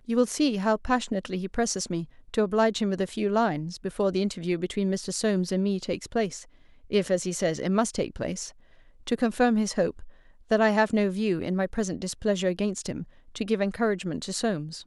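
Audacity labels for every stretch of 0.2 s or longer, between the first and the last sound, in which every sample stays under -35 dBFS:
2.040000	2.340000	silence
6.430000	6.910000	silence
8.490000	9.070000	silence
10.040000	10.510000	silence
13.030000	13.350000	silence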